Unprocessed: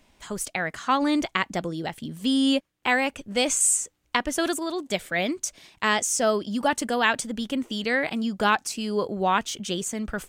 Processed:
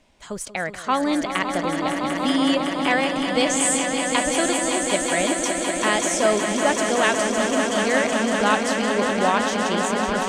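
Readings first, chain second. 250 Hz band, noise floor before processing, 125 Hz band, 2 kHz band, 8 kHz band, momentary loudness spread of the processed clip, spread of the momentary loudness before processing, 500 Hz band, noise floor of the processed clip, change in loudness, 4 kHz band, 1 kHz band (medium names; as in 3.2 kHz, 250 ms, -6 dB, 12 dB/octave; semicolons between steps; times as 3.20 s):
+4.0 dB, -67 dBFS, +3.0 dB, +4.0 dB, +2.5 dB, 5 LU, 8 LU, +6.5 dB, -35 dBFS, +4.0 dB, +3.5 dB, +4.5 dB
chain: low-pass 10 kHz 12 dB/octave; peaking EQ 580 Hz +4 dB 0.62 oct; echo with a slow build-up 187 ms, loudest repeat 5, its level -8 dB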